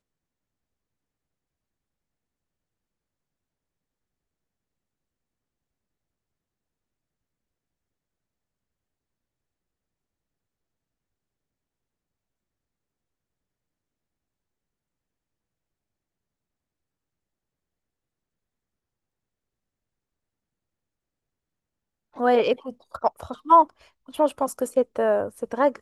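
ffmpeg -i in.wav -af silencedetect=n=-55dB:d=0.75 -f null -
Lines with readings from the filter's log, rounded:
silence_start: 0.00
silence_end: 22.13 | silence_duration: 22.13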